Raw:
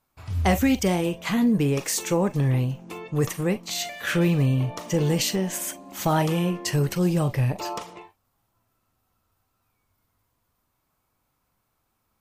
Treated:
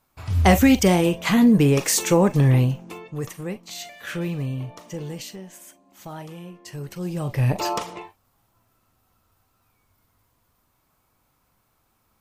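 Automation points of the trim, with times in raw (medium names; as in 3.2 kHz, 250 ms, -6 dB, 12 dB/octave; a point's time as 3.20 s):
2.67 s +5.5 dB
3.20 s -6.5 dB
4.62 s -6.5 dB
5.58 s -15 dB
6.57 s -15 dB
7.23 s -4.5 dB
7.54 s +6 dB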